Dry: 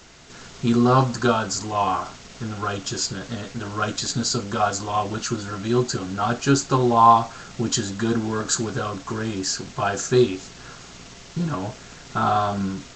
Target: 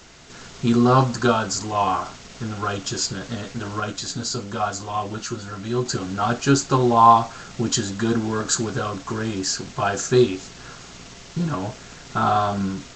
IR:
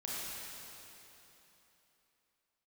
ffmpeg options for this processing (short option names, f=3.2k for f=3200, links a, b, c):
-filter_complex "[0:a]asettb=1/sr,asplit=3[a][b][c];[a]atrim=end=3.804[d];[b]atrim=start=3.8:end=5.86,asetpts=PTS-STARTPTS,afade=t=in:d=0.004:c=qsin,afade=t=out:st=2.056:d=0.004:c=qsin,flanger=delay=9.7:depth=1.7:regen=-48:speed=1.5:shape=triangular[e];[c]atrim=start=5.856[f];[d][e]acrossfade=d=0.004:c1=hsin:c2=qsin[g];[g][f]acrossfade=d=0.004:c1=qsin:c2=hsin,volume=1dB"